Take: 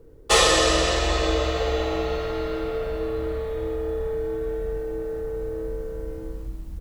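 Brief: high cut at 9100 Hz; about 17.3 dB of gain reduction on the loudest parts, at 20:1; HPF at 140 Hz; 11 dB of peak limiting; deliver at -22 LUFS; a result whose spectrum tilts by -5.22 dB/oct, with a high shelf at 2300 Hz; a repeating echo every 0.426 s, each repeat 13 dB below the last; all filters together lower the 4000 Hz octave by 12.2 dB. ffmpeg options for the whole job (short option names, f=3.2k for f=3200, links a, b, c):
-af "highpass=140,lowpass=9.1k,highshelf=f=2.3k:g=-8,equalizer=f=4k:t=o:g=-8.5,acompressor=threshold=-34dB:ratio=20,alimiter=level_in=9.5dB:limit=-24dB:level=0:latency=1,volume=-9.5dB,aecho=1:1:426|852|1278:0.224|0.0493|0.0108,volume=17.5dB"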